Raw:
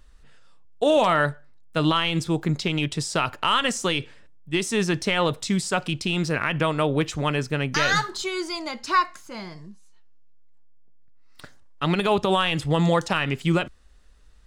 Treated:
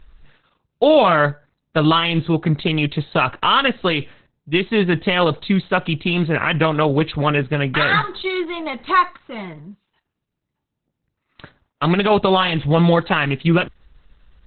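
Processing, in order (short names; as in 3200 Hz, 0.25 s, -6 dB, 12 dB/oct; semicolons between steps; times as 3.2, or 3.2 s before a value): 2.59–3.87 upward compressor, threshold -33 dBFS; gain +6.5 dB; Opus 8 kbps 48000 Hz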